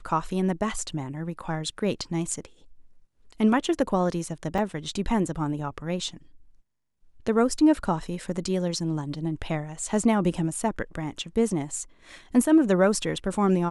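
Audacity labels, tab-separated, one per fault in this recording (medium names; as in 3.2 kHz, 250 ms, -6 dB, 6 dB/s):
4.580000	4.580000	dropout 3.4 ms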